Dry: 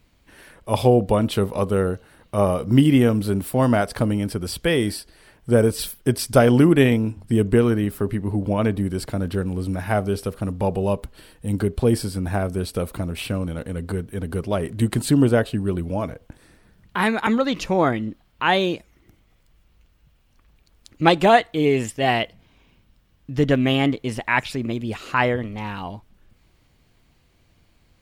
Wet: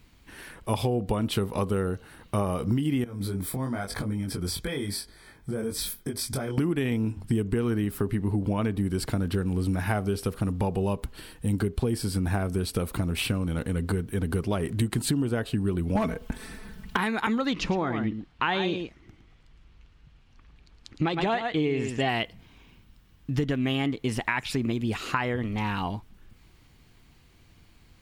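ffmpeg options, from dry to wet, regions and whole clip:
ffmpeg -i in.wav -filter_complex "[0:a]asettb=1/sr,asplit=3[link_01][link_02][link_03];[link_01]atrim=end=3.044[link_04];[link_02]atrim=start=3.04:end=6.58,asetpts=PTS-STARTPTS,afade=type=in:duration=0.004:curve=qsin,afade=type=out:start_time=3.536:duration=0.004:curve=qsin,acompressor=threshold=-26dB:ratio=6:attack=3.2:release=140:knee=1:detection=peak,flanger=delay=20:depth=2.6:speed=1,asuperstop=centerf=2800:order=20:qfactor=6[link_05];[link_03]atrim=start=6.576[link_06];[link_04][link_05]acrossfade=duration=0.004:curve1=hsin:curve2=qsin[link_07];[link_07][link_06]acrossfade=duration=0.004:curve1=qsin:curve2=hsin,asettb=1/sr,asplit=3[link_08][link_09][link_10];[link_08]atrim=end=15.954[link_11];[link_09]atrim=start=15.95:end=16.97,asetpts=PTS-STARTPTS,afade=type=in:duration=0.004:curve=qsin,afade=type=out:start_time=1.016:duration=0.004:curve=qsin,aecho=1:1:4.6:0.86,atrim=end_sample=44982,acontrast=66,asoftclip=type=hard:threshold=-10.5dB[link_12];[link_10]atrim=start=16.966[link_13];[link_11][link_12]acrossfade=duration=0.004:curve1=hsin:curve2=qsin[link_14];[link_14][link_13]acrossfade=duration=0.004:curve1=qsin:curve2=hsin,asettb=1/sr,asplit=3[link_15][link_16][link_17];[link_15]atrim=end=17.534[link_18];[link_16]atrim=start=17.53:end=22.09,asetpts=PTS-STARTPTS,afade=type=in:duration=0.004:curve=qsin,afade=type=out:start_time=4.556:duration=0.004:curve=qsin,lowpass=5200,aecho=1:1:111:0.335,atrim=end_sample=201096[link_19];[link_17]atrim=start=22.086[link_20];[link_18][link_19]acrossfade=duration=0.004:curve1=hsin:curve2=qsin[link_21];[link_21][link_20]acrossfade=duration=0.004:curve1=qsin:curve2=hsin,equalizer=frequency=580:width=2.9:gain=-6.5,alimiter=limit=-10dB:level=0:latency=1:release=228,acompressor=threshold=-26dB:ratio=6,volume=3dB" out.wav

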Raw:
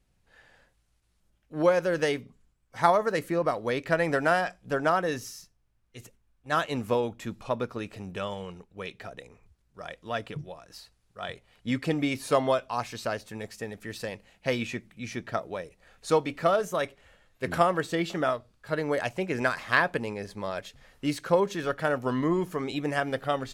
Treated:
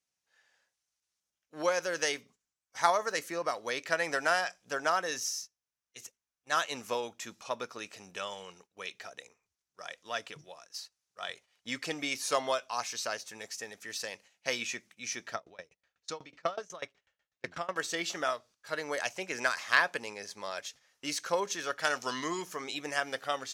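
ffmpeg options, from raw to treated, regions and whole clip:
ffmpeg -i in.wav -filter_complex "[0:a]asettb=1/sr,asplit=3[link_01][link_02][link_03];[link_01]atrim=end=15.344[link_04];[link_02]atrim=start=15.34:end=17.76,asetpts=PTS-STARTPTS,afade=type=in:duration=0.004:curve=qsin,afade=type=out:start_time=2.416:duration=0.004:curve=qsin,lowpass=5200,equalizer=frequency=70:width=0.48:gain=11.5,aeval=exprs='val(0)*pow(10,-25*if(lt(mod(8.1*n/s,1),2*abs(8.1)/1000),1-mod(8.1*n/s,1)/(2*abs(8.1)/1000),(mod(8.1*n/s,1)-2*abs(8.1)/1000)/(1-2*abs(8.1)/1000))/20)':channel_layout=same[link_05];[link_03]atrim=start=17.756[link_06];[link_04][link_05]acrossfade=duration=0.004:curve1=hsin:curve2=qsin[link_07];[link_07][link_06]acrossfade=duration=0.004:curve1=qsin:curve2=hsin,asettb=1/sr,asplit=3[link_08][link_09][link_10];[link_08]atrim=end=21.834[link_11];[link_09]atrim=start=21.83:end=22.42,asetpts=PTS-STARTPTS,afade=type=in:duration=0.004:curve=qsin,afade=type=out:start_time=0.586:duration=0.004:curve=qsin,equalizer=frequency=4900:width_type=o:width=1.9:gain=11,bandreject=frequency=550:width=11[link_12];[link_10]atrim=start=22.416[link_13];[link_11][link_12]acrossfade=duration=0.004:curve1=hsin:curve2=qsin[link_14];[link_14][link_13]acrossfade=duration=0.004:curve1=qsin:curve2=hsin,agate=range=-10dB:threshold=-50dB:ratio=16:detection=peak,highpass=frequency=1200:poles=1,equalizer=frequency=6000:width=2.1:gain=10.5" out.wav

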